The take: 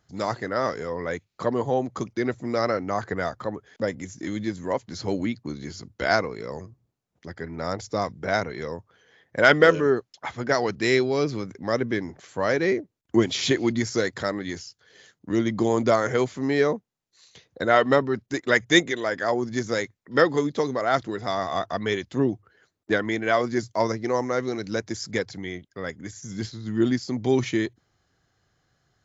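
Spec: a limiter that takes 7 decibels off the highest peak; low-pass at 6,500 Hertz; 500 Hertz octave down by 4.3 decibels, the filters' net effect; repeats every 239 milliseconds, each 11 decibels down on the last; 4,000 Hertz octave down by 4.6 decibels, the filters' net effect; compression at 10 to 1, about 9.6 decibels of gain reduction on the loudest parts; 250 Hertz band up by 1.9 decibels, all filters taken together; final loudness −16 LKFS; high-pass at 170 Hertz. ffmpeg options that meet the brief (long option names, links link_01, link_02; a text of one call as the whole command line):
ffmpeg -i in.wav -af "highpass=170,lowpass=6500,equalizer=frequency=250:width_type=o:gain=6,equalizer=frequency=500:width_type=o:gain=-7.5,equalizer=frequency=4000:width_type=o:gain=-5,acompressor=threshold=-23dB:ratio=10,alimiter=limit=-18.5dB:level=0:latency=1,aecho=1:1:239|478|717:0.282|0.0789|0.0221,volume=15dB" out.wav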